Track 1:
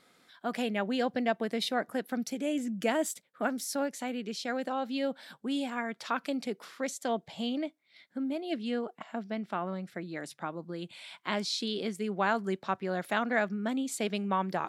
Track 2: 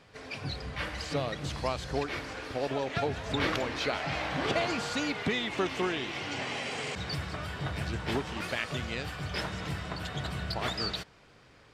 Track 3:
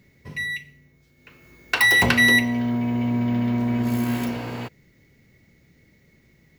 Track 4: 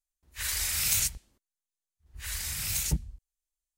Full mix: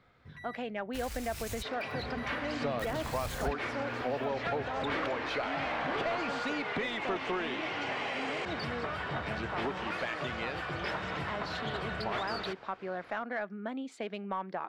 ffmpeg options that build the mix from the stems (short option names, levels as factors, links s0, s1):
-filter_complex "[0:a]adynamicsmooth=sensitivity=4:basefreq=6800,volume=0.376,asplit=2[s0][s1];[1:a]adelay=1500,volume=0.891[s2];[2:a]acompressor=threshold=0.0447:ratio=6,volume=0.112[s3];[3:a]acrusher=bits=4:mix=0:aa=0.000001,adelay=550,volume=1.12[s4];[s1]apad=whole_len=190669[s5];[s4][s5]sidechaincompress=threshold=0.00794:ratio=8:attack=32:release=168[s6];[s3][s6]amix=inputs=2:normalize=0,lowshelf=f=200:g=11.5,acompressor=threshold=0.01:ratio=2.5,volume=1[s7];[s0][s2]amix=inputs=2:normalize=0,asplit=2[s8][s9];[s9]highpass=f=720:p=1,volume=7.08,asoftclip=type=tanh:threshold=0.178[s10];[s8][s10]amix=inputs=2:normalize=0,lowpass=f=1800:p=1,volume=0.501,acompressor=threshold=0.02:ratio=2,volume=1[s11];[s7][s11]amix=inputs=2:normalize=0,highshelf=f=4600:g=-8.5"